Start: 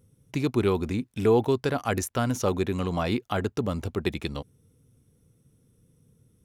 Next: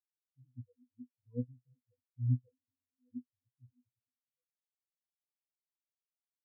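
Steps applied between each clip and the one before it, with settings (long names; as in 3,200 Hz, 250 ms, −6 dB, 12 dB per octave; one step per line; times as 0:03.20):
flanger swept by the level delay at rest 4.9 ms, full sweep at −21 dBFS
resonances in every octave B, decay 0.24 s
every bin expanded away from the loudest bin 4 to 1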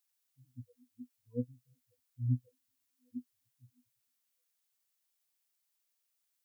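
spectral tilt +2.5 dB per octave
level +6.5 dB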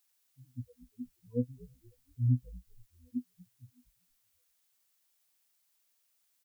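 notch filter 400 Hz, Q 12
in parallel at +1 dB: brickwall limiter −29.5 dBFS, peak gain reduction 8 dB
on the sum: echo with shifted repeats 238 ms, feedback 42%, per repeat −68 Hz, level −20.5 dB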